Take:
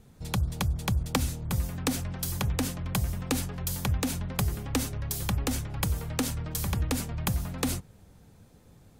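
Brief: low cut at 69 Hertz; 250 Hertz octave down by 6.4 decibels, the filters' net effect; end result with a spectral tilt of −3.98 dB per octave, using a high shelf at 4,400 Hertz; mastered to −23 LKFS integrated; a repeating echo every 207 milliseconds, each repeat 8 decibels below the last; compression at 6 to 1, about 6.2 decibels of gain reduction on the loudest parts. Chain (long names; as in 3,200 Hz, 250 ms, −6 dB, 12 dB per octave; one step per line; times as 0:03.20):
high-pass filter 69 Hz
parametric band 250 Hz −8.5 dB
high-shelf EQ 4,400 Hz −3.5 dB
downward compressor 6 to 1, threshold −33 dBFS
repeating echo 207 ms, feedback 40%, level −8 dB
level +14 dB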